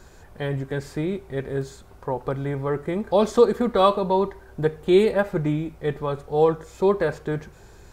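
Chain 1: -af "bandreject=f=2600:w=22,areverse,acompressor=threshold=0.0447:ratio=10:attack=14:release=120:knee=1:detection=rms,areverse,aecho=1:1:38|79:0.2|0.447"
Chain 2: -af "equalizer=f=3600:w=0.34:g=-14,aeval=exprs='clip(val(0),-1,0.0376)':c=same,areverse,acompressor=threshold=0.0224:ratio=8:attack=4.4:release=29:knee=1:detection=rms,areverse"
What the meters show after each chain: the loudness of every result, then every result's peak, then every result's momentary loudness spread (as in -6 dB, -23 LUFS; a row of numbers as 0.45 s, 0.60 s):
-31.5 LUFS, -38.0 LUFS; -15.5 dBFS, -24.5 dBFS; 5 LU, 5 LU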